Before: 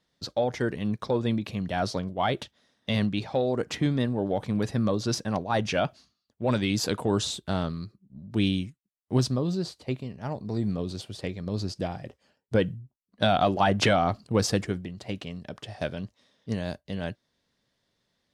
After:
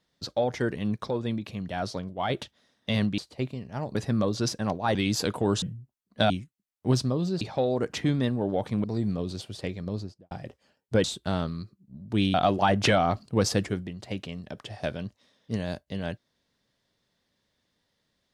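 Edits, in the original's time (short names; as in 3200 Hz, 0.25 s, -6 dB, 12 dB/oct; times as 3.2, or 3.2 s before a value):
1.1–2.3 gain -3.5 dB
3.18–4.61 swap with 9.67–10.44
5.61–6.59 cut
7.26–8.56 swap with 12.64–13.32
11.39–11.91 studio fade out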